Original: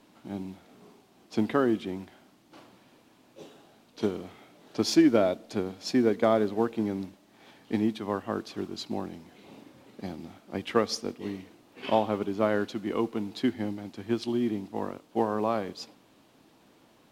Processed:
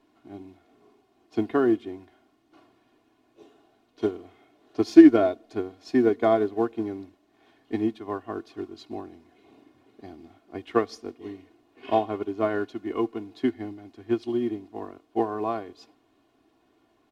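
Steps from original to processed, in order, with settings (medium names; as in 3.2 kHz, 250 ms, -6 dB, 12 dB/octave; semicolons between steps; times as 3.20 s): treble shelf 3.7 kHz -9.5 dB; comb 2.8 ms, depth 73%; upward expansion 1.5:1, over -35 dBFS; trim +5.5 dB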